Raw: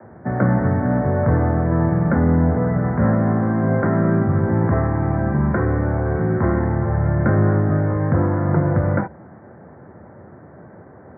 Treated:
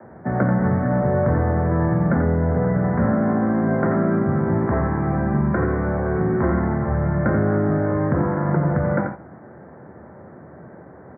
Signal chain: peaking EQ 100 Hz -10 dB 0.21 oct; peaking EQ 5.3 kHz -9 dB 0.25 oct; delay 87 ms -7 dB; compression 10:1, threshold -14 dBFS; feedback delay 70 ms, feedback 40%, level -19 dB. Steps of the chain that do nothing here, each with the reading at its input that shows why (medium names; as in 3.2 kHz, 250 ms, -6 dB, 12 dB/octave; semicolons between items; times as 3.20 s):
peaking EQ 5.3 kHz: input has nothing above 1.6 kHz